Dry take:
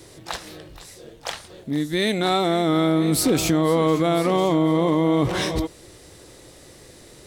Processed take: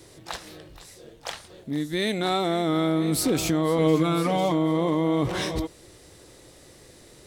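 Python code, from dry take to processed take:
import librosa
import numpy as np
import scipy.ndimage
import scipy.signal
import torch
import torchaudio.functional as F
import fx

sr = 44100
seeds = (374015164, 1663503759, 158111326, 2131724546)

y = fx.comb(x, sr, ms=6.7, depth=0.72, at=(3.78, 4.52))
y = y * librosa.db_to_amplitude(-4.0)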